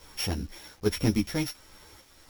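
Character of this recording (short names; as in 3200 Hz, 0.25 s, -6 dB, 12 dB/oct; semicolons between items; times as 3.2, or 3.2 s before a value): a buzz of ramps at a fixed pitch in blocks of 8 samples; random-step tremolo; a quantiser's noise floor 10-bit, dither none; a shimmering, thickened sound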